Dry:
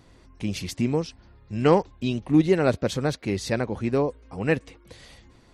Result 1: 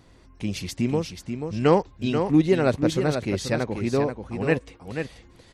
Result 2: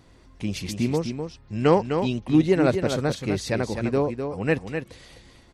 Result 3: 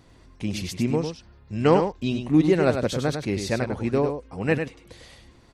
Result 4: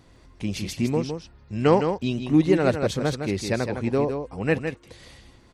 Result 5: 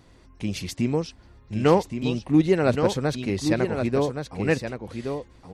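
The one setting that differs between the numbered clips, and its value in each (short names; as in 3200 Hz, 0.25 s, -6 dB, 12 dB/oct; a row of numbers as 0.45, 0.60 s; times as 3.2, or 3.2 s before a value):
echo, time: 0.485, 0.254, 0.1, 0.16, 1.121 s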